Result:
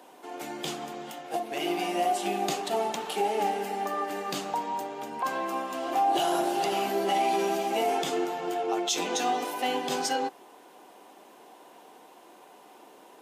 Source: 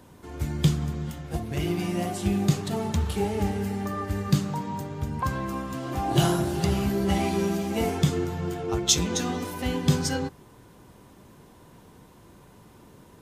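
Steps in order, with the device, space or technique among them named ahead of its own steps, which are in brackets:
laptop speaker (high-pass filter 300 Hz 24 dB per octave; parametric band 750 Hz +11 dB 0.46 octaves; parametric band 2,800 Hz +5 dB 0.6 octaves; brickwall limiter −17.5 dBFS, peak gain reduction 11 dB)

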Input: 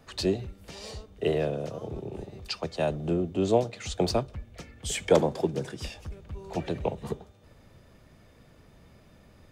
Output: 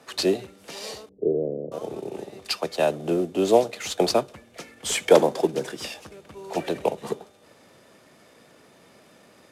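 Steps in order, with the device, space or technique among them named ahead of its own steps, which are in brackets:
early wireless headset (high-pass filter 280 Hz 12 dB per octave; variable-slope delta modulation 64 kbit/s)
0:01.09–0:01.72: inverse Chebyshev low-pass filter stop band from 1,600 Hz, stop band 60 dB
level +6.5 dB

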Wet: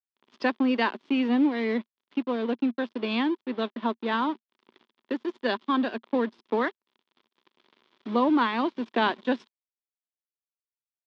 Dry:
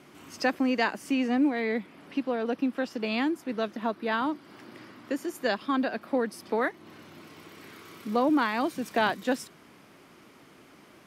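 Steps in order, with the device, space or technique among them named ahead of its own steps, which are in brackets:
blown loudspeaker (dead-zone distortion −41.5 dBFS; loudspeaker in its box 210–4,400 Hz, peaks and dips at 230 Hz +8 dB, 380 Hz +7 dB, 720 Hz −3 dB, 1,000 Hz +7 dB, 3,400 Hz +7 dB)

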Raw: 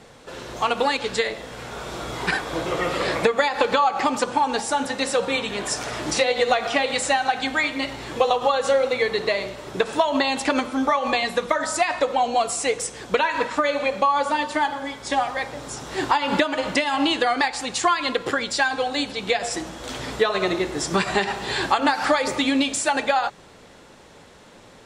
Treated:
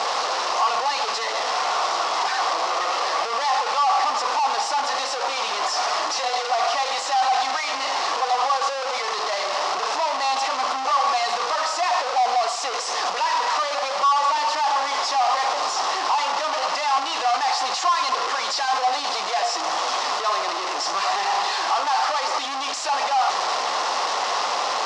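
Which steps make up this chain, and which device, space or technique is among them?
home computer beeper (sign of each sample alone; loudspeaker in its box 710–5,700 Hz, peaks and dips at 750 Hz +9 dB, 1,100 Hz +9 dB, 1,600 Hz −6 dB, 2,300 Hz −5 dB, 3,400 Hz −4 dB, 5,300 Hz +4 dB)
low-shelf EQ 280 Hz −6 dB
level +1 dB

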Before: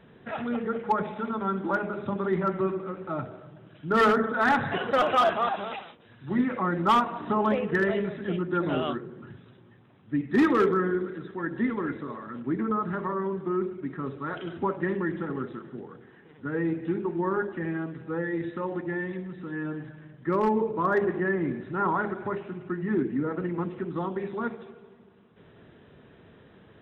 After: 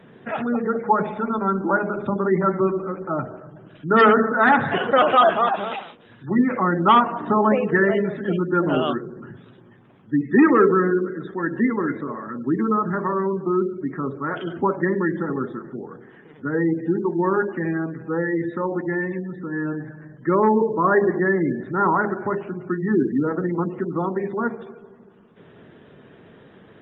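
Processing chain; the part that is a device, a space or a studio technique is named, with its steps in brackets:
noise-suppressed video call (high-pass filter 120 Hz 12 dB per octave; gate on every frequency bin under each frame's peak −30 dB strong; level +7 dB; Opus 24 kbit/s 48,000 Hz)

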